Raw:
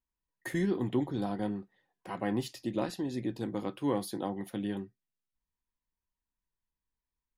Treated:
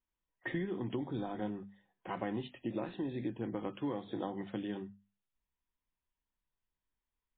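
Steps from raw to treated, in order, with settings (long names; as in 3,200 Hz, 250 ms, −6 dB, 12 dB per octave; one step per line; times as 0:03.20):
downward compressor 8 to 1, threshold −33 dBFS, peak gain reduction 9 dB
mains-hum notches 50/100/150/200/250 Hz
level +1 dB
MP3 16 kbit/s 8,000 Hz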